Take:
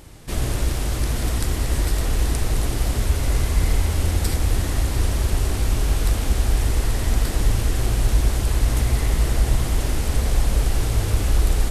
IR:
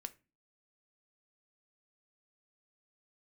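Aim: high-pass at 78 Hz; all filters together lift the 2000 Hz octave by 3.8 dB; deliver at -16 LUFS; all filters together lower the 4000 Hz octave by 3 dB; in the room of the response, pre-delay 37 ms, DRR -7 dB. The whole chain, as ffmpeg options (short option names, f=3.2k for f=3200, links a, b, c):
-filter_complex "[0:a]highpass=78,equalizer=f=2k:t=o:g=6,equalizer=f=4k:t=o:g=-6,asplit=2[a][b];[1:a]atrim=start_sample=2205,adelay=37[c];[b][c]afir=irnorm=-1:irlink=0,volume=11dB[d];[a][d]amix=inputs=2:normalize=0,volume=2.5dB"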